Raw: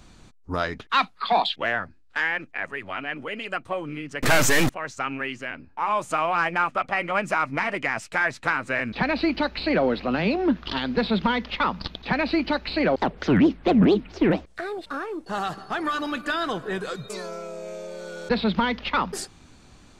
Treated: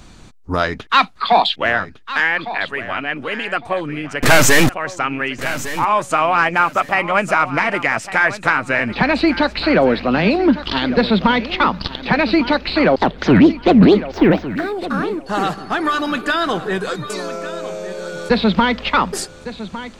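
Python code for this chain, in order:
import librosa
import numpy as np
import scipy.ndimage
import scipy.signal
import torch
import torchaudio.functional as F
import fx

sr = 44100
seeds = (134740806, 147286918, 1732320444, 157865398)

y = fx.echo_feedback(x, sr, ms=1156, feedback_pct=23, wet_db=-14)
y = fx.resample_linear(y, sr, factor=2, at=(14.13, 14.76))
y = y * librosa.db_to_amplitude(8.0)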